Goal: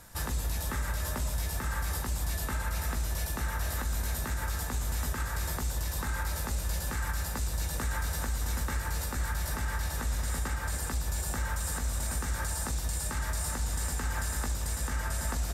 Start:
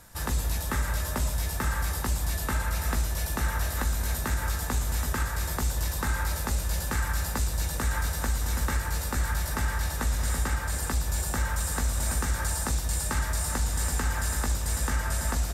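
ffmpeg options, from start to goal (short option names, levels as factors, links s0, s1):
-af "alimiter=limit=0.0708:level=0:latency=1:release=168"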